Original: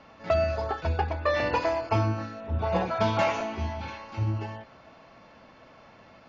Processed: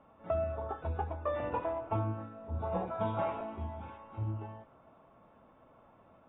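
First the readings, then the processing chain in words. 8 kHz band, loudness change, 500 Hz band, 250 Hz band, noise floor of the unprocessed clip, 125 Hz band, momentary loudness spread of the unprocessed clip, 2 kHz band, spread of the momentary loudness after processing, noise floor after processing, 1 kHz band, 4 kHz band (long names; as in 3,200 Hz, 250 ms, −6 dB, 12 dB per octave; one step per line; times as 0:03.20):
can't be measured, −8.5 dB, −8.0 dB, −8.0 dB, −54 dBFS, −8.0 dB, 9 LU, −16.5 dB, 8 LU, −62 dBFS, −8.0 dB, −20.5 dB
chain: flat-topped bell 2,700 Hz −11.5 dB
level −8 dB
AAC 16 kbit/s 16,000 Hz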